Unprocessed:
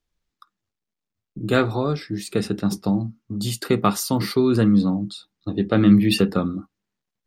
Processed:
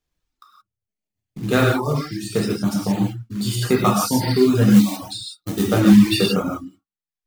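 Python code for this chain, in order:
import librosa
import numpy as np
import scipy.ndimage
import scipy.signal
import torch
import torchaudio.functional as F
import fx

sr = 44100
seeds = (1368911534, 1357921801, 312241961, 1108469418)

y = fx.quant_float(x, sr, bits=2)
y = fx.dereverb_blind(y, sr, rt60_s=1.3)
y = fx.high_shelf(y, sr, hz=4400.0, db=10.5, at=(4.7, 5.71))
y = fx.rev_gated(y, sr, seeds[0], gate_ms=200, shape='flat', drr_db=-4.0)
y = fx.dereverb_blind(y, sr, rt60_s=0.51)
y = y * librosa.db_to_amplitude(-1.0)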